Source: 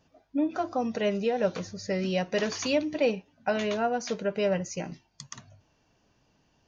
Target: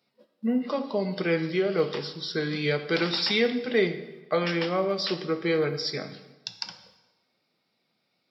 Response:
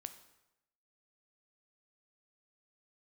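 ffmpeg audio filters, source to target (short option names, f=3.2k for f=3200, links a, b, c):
-filter_complex "[0:a]agate=range=-9dB:threshold=-56dB:ratio=16:detection=peak,highpass=f=200:w=0.5412,highpass=f=200:w=1.3066[a];[1:a]atrim=start_sample=2205[b];[a][b]afir=irnorm=-1:irlink=0,asetrate=35456,aresample=44100,highshelf=f=2.6k:g=10.5,volume=5.5dB"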